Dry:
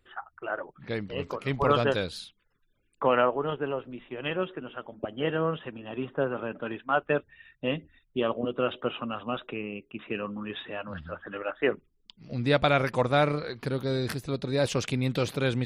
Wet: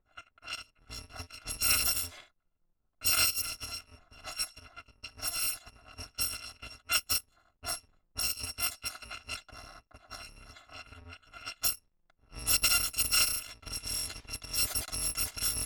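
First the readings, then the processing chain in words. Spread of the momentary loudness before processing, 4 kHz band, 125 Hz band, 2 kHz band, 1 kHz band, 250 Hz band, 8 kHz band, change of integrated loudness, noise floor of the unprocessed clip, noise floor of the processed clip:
14 LU, +5.0 dB, −15.5 dB, −4.5 dB, −12.5 dB, −22.0 dB, can't be measured, −1.0 dB, −71 dBFS, −76 dBFS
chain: samples in bit-reversed order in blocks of 256 samples
low-pass that shuts in the quiet parts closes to 1,100 Hz, open at −22.5 dBFS
level −2.5 dB

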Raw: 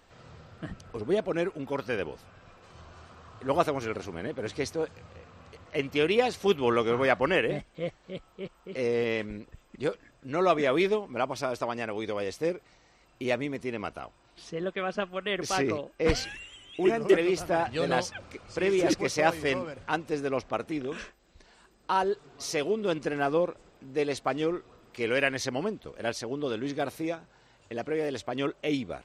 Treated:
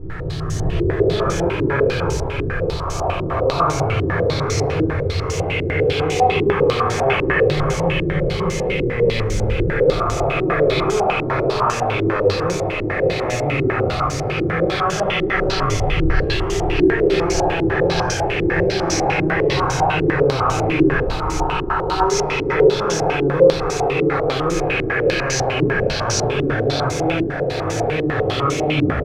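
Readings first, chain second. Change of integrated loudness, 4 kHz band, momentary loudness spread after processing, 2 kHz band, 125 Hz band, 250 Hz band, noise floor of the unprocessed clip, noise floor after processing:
+11.0 dB, +11.5 dB, 5 LU, +11.5 dB, +19.0 dB, +10.5 dB, −62 dBFS, −23 dBFS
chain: peak hold with a rise ahead of every peak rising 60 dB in 1.74 s
low shelf with overshoot 150 Hz +11.5 dB, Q 1.5
reversed playback
downward compressor, threshold −32 dBFS, peak gain reduction 21.5 dB
reversed playback
background noise blue −45 dBFS
on a send: repeating echo 604 ms, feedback 53%, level −6.5 dB
on the sum: rectangular room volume 670 cubic metres, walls furnished, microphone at 4.1 metres
low-pass on a step sequencer 10 Hz 330–6,300 Hz
level +6 dB

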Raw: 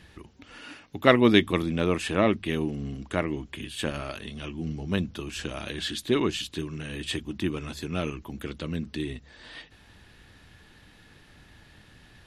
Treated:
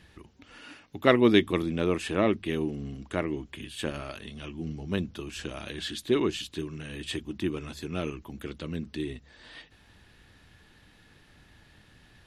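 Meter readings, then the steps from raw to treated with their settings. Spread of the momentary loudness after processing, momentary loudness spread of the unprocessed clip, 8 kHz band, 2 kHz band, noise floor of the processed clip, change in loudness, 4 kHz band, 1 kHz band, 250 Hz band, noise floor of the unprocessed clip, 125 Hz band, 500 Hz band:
17 LU, 16 LU, −3.5 dB, −3.5 dB, −59 dBFS, −2.0 dB, −3.5 dB, −3.5 dB, −1.5 dB, −55 dBFS, −3.5 dB, −1.0 dB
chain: dynamic equaliser 370 Hz, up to +4 dB, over −37 dBFS, Q 1.9
level −3.5 dB

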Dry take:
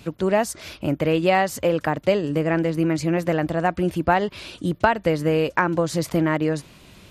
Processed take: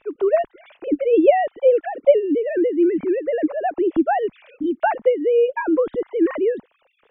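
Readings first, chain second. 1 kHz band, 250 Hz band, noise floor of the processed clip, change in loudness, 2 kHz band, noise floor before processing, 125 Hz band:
−0.5 dB, +1.5 dB, −65 dBFS, +2.5 dB, −5.5 dB, −49 dBFS, below −25 dB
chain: three sine waves on the formant tracks
spectral tilt −3.5 dB per octave
level −1 dB

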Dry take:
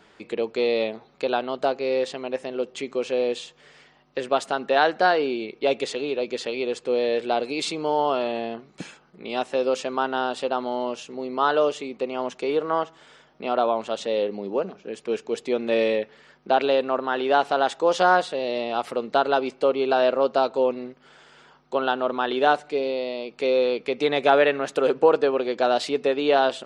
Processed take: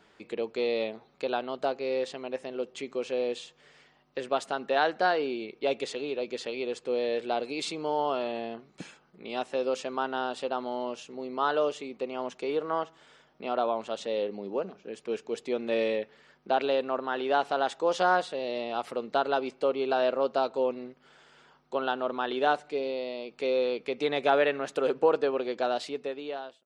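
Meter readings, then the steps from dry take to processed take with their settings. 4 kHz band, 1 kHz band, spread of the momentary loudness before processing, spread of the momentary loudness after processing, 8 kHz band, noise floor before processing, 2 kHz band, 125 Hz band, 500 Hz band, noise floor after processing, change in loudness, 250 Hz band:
−6.5 dB, −6.0 dB, 11 LU, 11 LU, −6.0 dB, −56 dBFS, −6.0 dB, −6.0 dB, −6.0 dB, −63 dBFS, −6.0 dB, −6.0 dB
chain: fade-out on the ending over 1.16 s
level −6 dB

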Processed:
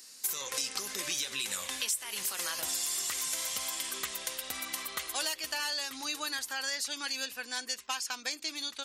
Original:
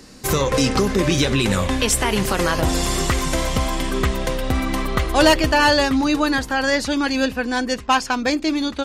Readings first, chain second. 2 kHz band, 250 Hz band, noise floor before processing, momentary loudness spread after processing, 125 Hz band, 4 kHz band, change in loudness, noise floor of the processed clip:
−15.0 dB, −30.5 dB, −36 dBFS, 4 LU, −38.0 dB, −9.5 dB, −13.5 dB, −51 dBFS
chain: first difference
downward compressor 6 to 1, threshold −30 dBFS, peak gain reduction 14.5 dB

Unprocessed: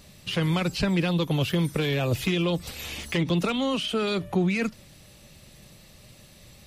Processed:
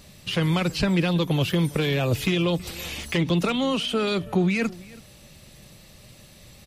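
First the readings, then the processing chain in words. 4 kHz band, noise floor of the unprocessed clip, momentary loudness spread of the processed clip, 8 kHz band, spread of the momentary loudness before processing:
+2.0 dB, −52 dBFS, 6 LU, +2.0 dB, 5 LU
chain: slap from a distant wall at 56 metres, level −21 dB
level +2 dB

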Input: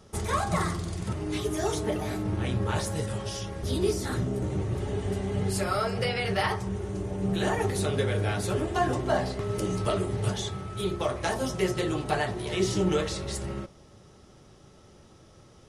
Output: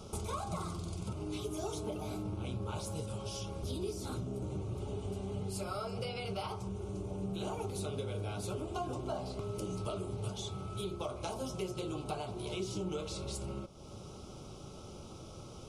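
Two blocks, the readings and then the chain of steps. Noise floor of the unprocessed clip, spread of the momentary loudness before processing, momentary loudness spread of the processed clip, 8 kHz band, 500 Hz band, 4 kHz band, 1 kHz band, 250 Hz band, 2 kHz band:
−54 dBFS, 6 LU, 11 LU, −9.0 dB, −10.5 dB, −9.5 dB, −11.0 dB, −10.0 dB, −17.5 dB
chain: downward compressor 3 to 1, threshold −47 dBFS, peak gain reduction 19 dB
Butterworth band-reject 1,800 Hz, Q 2.1
level +5.5 dB

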